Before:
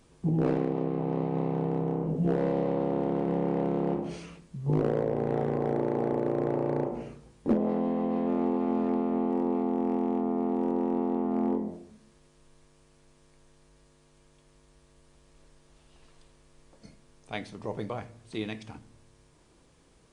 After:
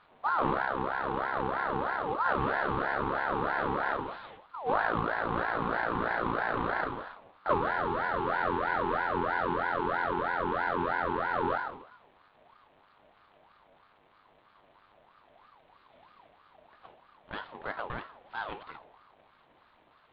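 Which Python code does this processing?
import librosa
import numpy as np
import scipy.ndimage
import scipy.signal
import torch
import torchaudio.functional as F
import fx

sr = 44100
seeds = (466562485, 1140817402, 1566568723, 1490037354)

y = fx.cvsd(x, sr, bps=16000)
y = fx.ring_lfo(y, sr, carrier_hz=920.0, swing_pct=35, hz=3.1)
y = y * 10.0 ** (1.0 / 20.0)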